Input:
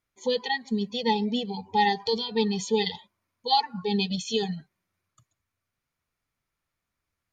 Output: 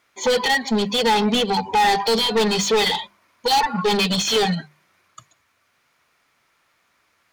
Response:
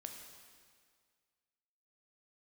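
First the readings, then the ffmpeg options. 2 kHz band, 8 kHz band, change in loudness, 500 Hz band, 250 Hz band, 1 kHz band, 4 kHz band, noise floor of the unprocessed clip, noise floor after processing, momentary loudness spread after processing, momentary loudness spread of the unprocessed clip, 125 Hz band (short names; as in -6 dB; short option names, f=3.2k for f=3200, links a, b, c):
+10.5 dB, +14.0 dB, +7.5 dB, +7.5 dB, +5.0 dB, +7.5 dB, +9.0 dB, -85 dBFS, -66 dBFS, 5 LU, 7 LU, +6.5 dB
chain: -filter_complex "[0:a]asplit=2[a][b];[b]highpass=f=720:p=1,volume=30dB,asoftclip=type=tanh:threshold=-10dB[c];[a][c]amix=inputs=2:normalize=0,lowpass=f=3.5k:p=1,volume=-6dB,bandreject=f=50:t=h:w=6,bandreject=f=100:t=h:w=6,bandreject=f=150:t=h:w=6,bandreject=f=200:t=h:w=6"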